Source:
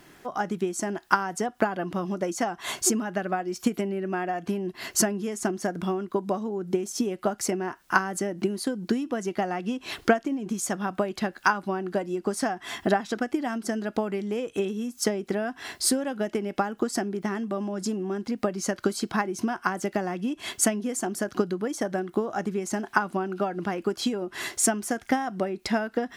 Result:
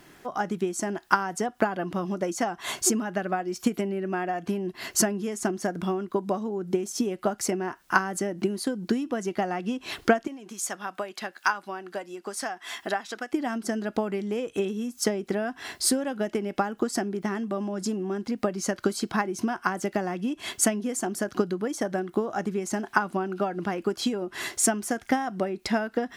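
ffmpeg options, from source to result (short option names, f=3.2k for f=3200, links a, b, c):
-filter_complex "[0:a]asettb=1/sr,asplit=3[a][b][c];[a]atrim=end=10.274[d];[b]atrim=start=10.27:end=13.33,asetpts=PTS-STARTPTS,afade=t=in:d=0.004:c=qsin,afade=t=out:st=3.056:d=0.004:c=qsin,highpass=f=1k:p=1[e];[c]atrim=start=13.326[f];[d][e]acrossfade=d=0.004:c1=hsin:c2=qsin[g];[g][f]acrossfade=d=0.004:c1=qsin:c2=hsin"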